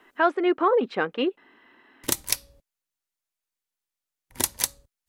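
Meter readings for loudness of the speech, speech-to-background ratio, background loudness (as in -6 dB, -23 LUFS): -24.0 LUFS, 3.5 dB, -27.5 LUFS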